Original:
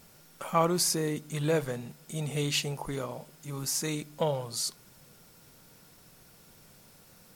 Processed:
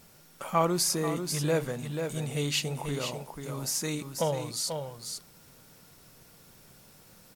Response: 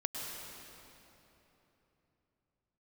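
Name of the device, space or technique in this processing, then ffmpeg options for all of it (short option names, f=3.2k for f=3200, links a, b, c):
ducked delay: -filter_complex "[0:a]asplit=3[a][b][c];[b]adelay=488,volume=-6dB[d];[c]apad=whole_len=345839[e];[d][e]sidechaincompress=threshold=-30dB:ratio=8:attack=6.2:release=192[f];[a][f]amix=inputs=2:normalize=0"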